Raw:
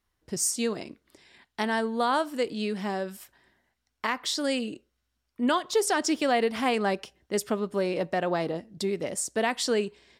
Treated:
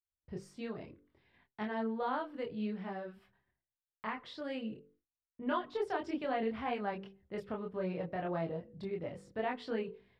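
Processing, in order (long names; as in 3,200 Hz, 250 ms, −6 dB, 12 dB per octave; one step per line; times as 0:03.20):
low shelf with overshoot 180 Hz +7 dB, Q 1.5
hum removal 48.74 Hz, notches 11
multi-voice chorus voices 4, 0.65 Hz, delay 25 ms, depth 2.5 ms
downward expander −58 dBFS
high-frequency loss of the air 410 metres
level −5 dB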